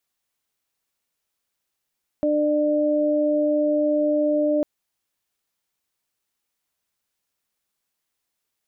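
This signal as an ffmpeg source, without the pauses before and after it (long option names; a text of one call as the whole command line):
ffmpeg -f lavfi -i "aevalsrc='0.0841*sin(2*PI*299*t)+0.106*sin(2*PI*598*t)':duration=2.4:sample_rate=44100" out.wav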